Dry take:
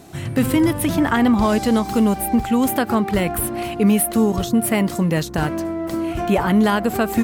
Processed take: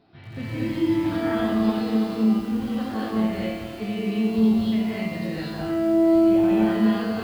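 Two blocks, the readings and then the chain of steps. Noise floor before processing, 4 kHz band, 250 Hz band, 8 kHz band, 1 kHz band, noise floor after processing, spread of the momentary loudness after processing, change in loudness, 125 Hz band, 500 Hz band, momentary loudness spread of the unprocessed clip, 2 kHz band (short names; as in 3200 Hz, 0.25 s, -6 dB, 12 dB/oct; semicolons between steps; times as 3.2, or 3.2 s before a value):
-29 dBFS, -6.5 dB, -3.0 dB, under -20 dB, -10.0 dB, -37 dBFS, 11 LU, -4.0 dB, -7.5 dB, -4.0 dB, 7 LU, -8.5 dB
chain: dynamic EQ 1000 Hz, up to -5 dB, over -34 dBFS, Q 0.76; flange 0.84 Hz, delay 6.5 ms, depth 7.5 ms, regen -67%; resonator 110 Hz, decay 1.1 s, harmonics all, mix 90%; non-linear reverb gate 0.28 s rising, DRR -7 dB; downsampling 11025 Hz; lo-fi delay 88 ms, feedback 80%, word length 8-bit, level -9 dB; gain +3.5 dB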